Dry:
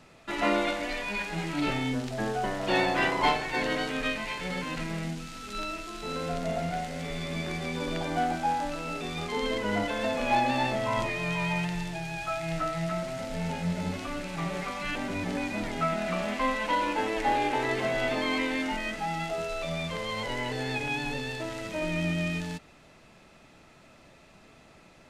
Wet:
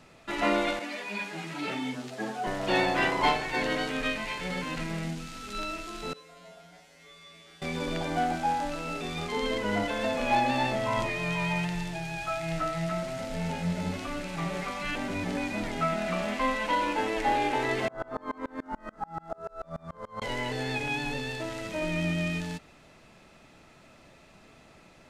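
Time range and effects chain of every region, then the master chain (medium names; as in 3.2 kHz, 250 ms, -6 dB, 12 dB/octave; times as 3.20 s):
0.79–2.47 s: high-pass 150 Hz 24 dB/octave + three-phase chorus
6.13–7.62 s: bass shelf 220 Hz -11.5 dB + feedback comb 61 Hz, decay 0.57 s, harmonics odd, mix 100%
17.88–20.22 s: resonant high shelf 1.8 kHz -11.5 dB, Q 3 + sawtooth tremolo in dB swelling 6.9 Hz, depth 31 dB
whole clip: none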